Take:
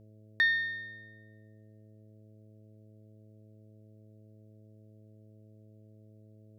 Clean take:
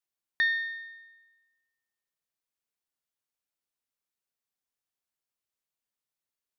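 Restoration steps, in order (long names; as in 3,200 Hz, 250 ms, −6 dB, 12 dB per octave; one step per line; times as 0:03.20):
hum removal 107.5 Hz, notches 6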